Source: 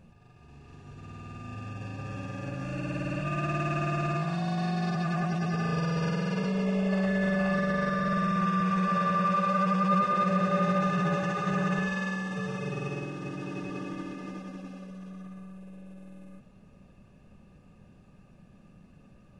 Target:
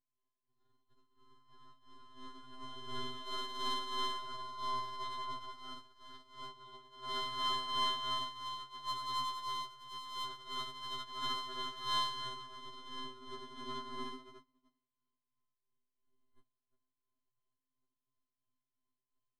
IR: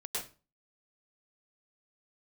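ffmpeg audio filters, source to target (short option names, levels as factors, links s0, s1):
-filter_complex "[0:a]asplit=2[s0][s1];[s1]alimiter=limit=0.0841:level=0:latency=1,volume=1.12[s2];[s0][s2]amix=inputs=2:normalize=0,aeval=exprs='(tanh(39.8*val(0)+0.15)-tanh(0.15))/39.8':c=same,areverse,acompressor=threshold=0.00794:ratio=12,areverse,superequalizer=10b=2.82:12b=0.282:13b=3.16,aeval=exprs='val(0)+0.000631*(sin(2*PI*50*n/s)+sin(2*PI*2*50*n/s)/2+sin(2*PI*3*50*n/s)/3+sin(2*PI*4*50*n/s)/4+sin(2*PI*5*50*n/s)/5)':c=same,afftfilt=real='hypot(re,im)*cos(PI*b)':imag='0':win_size=512:overlap=0.75,bandreject=f=2000:w=23,agate=range=0.00398:threshold=0.00562:ratio=16:detection=peak,tremolo=f=2.9:d=0.62,equalizer=f=190:t=o:w=2.9:g=6.5,afftfilt=real='re*2.45*eq(mod(b,6),0)':imag='im*2.45*eq(mod(b,6),0)':win_size=2048:overlap=0.75,volume=5.01"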